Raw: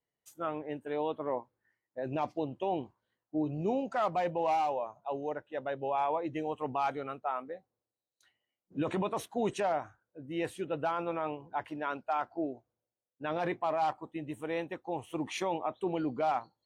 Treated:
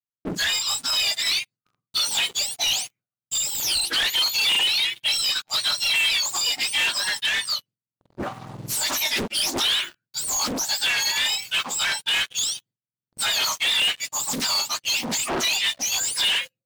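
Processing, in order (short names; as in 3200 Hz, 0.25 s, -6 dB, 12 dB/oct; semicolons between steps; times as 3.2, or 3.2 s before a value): spectrum mirrored in octaves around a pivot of 1500 Hz; recorder AGC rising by 23 dB/s; gate with hold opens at -58 dBFS; sample leveller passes 5; dynamic EQ 3500 Hz, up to +5 dB, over -40 dBFS, Q 1.1; Doppler distortion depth 0.83 ms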